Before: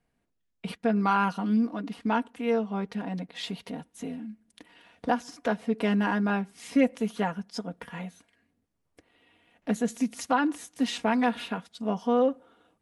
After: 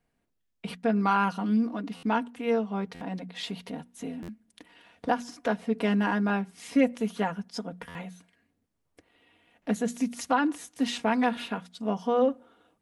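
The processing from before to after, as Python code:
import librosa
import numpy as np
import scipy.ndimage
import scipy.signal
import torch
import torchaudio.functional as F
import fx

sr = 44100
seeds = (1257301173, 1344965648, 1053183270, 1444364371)

y = fx.hum_notches(x, sr, base_hz=60, count=4)
y = fx.buffer_glitch(y, sr, at_s=(1.96, 2.94, 4.22, 7.88), block=512, repeats=5)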